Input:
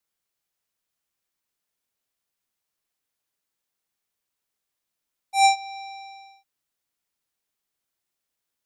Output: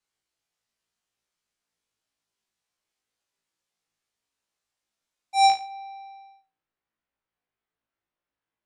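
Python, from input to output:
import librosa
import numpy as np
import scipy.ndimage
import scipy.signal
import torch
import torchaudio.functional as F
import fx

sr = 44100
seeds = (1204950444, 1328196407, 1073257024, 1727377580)

y = fx.lowpass(x, sr, hz=fx.steps((0.0, 8100.0), (5.5, 2200.0)), slope=12)
y = fx.room_flutter(y, sr, wall_m=3.1, rt60_s=0.32)
y = y * 10.0 ** (-1.5 / 20.0)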